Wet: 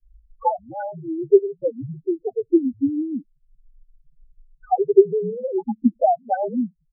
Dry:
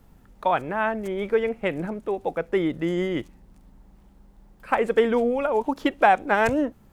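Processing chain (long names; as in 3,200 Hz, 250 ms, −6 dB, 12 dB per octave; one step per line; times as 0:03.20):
transient designer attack +10 dB, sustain −10 dB
in parallel at −11 dB: sample-and-hold swept by an LFO 35×, swing 160% 0.58 Hz
on the sum: notch filter 1,400 Hz, Q 14
spectral peaks only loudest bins 2
frequency shifter −54 Hz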